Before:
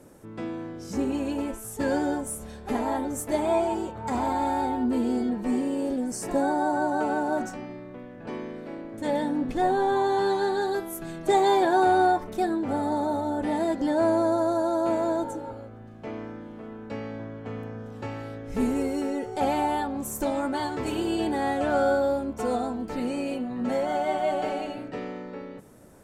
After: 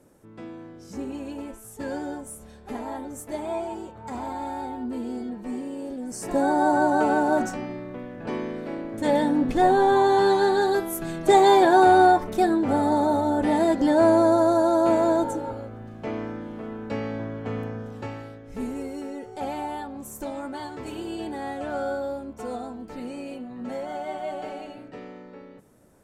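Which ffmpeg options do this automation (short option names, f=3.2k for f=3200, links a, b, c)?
-af "volume=5dB,afade=t=in:st=5.99:d=0.7:silence=0.281838,afade=t=out:st=17.61:d=0.79:silence=0.281838"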